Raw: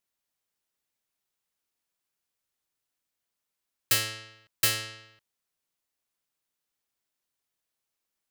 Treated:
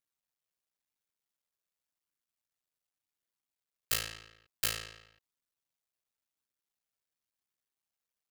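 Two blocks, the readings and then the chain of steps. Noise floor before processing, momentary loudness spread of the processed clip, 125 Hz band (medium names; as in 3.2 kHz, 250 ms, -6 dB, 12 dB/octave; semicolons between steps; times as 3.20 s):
-85 dBFS, 15 LU, -8.5 dB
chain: cycle switcher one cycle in 2, muted; flange 0.92 Hz, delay 0.5 ms, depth 1.4 ms, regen -65%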